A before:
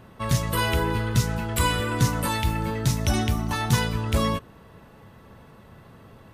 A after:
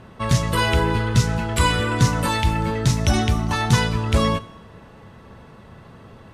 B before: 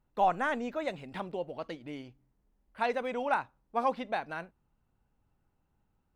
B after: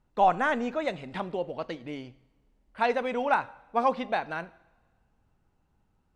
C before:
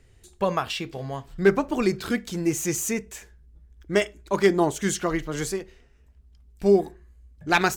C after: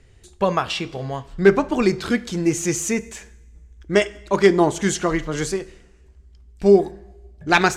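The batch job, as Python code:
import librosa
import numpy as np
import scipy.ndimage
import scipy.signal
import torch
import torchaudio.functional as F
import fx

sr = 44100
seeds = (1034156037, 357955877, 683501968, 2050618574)

y = scipy.signal.sosfilt(scipy.signal.butter(2, 8400.0, 'lowpass', fs=sr, output='sos'), x)
y = fx.rev_double_slope(y, sr, seeds[0], early_s=0.79, late_s=2.0, knee_db=-16, drr_db=17.0)
y = F.gain(torch.from_numpy(y), 4.5).numpy()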